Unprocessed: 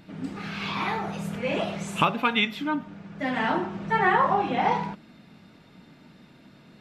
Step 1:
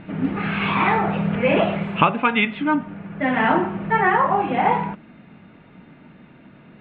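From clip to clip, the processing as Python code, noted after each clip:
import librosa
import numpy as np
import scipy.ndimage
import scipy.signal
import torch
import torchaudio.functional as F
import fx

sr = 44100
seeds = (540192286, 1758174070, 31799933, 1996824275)

y = scipy.signal.sosfilt(scipy.signal.cheby2(4, 40, 5500.0, 'lowpass', fs=sr, output='sos'), x)
y = fx.rider(y, sr, range_db=4, speed_s=0.5)
y = y * 10.0 ** (7.0 / 20.0)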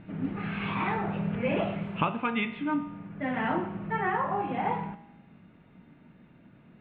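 y = fx.low_shelf(x, sr, hz=250.0, db=6.5)
y = fx.comb_fb(y, sr, f0_hz=58.0, decay_s=1.0, harmonics='all', damping=0.0, mix_pct=60)
y = y * 10.0 ** (-5.5 / 20.0)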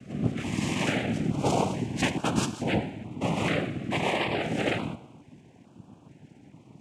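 y = fx.noise_vocoder(x, sr, seeds[0], bands=4)
y = fx.filter_held_notch(y, sr, hz=2.3, low_hz=920.0, high_hz=2000.0)
y = y * 10.0 ** (4.0 / 20.0)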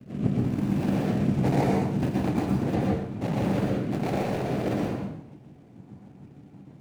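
y = scipy.ndimage.median_filter(x, 41, mode='constant')
y = fx.rev_plate(y, sr, seeds[1], rt60_s=0.63, hf_ratio=0.65, predelay_ms=105, drr_db=-1.5)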